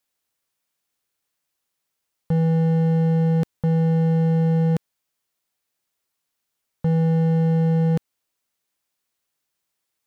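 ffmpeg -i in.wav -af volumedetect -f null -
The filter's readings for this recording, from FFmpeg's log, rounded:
mean_volume: -23.0 dB
max_volume: -15.5 dB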